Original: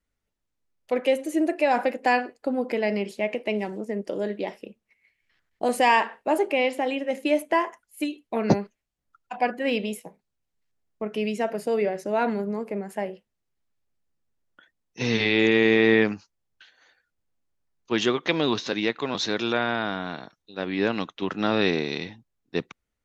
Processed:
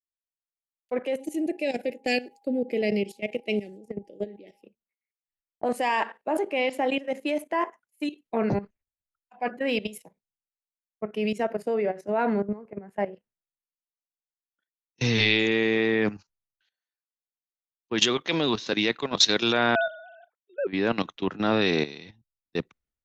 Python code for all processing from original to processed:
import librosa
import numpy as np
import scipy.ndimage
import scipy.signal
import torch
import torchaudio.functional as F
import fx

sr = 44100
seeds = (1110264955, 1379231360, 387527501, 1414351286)

y = fx.cheby1_bandstop(x, sr, low_hz=490.0, high_hz=2500.0, order=2, at=(1.19, 4.63), fade=0.02)
y = fx.high_shelf(y, sr, hz=8600.0, db=8.5, at=(1.19, 4.63), fade=0.02)
y = fx.dmg_tone(y, sr, hz=810.0, level_db=-53.0, at=(1.19, 4.63), fade=0.02)
y = fx.chain(y, sr, fx.sine_speech(),
    fx.tilt_eq(slope=-2.5), at=(19.75, 20.67))
y = fx.level_steps(y, sr, step_db=14)
y = fx.band_widen(y, sr, depth_pct=100)
y = F.gain(torch.from_numpy(y), 3.5).numpy()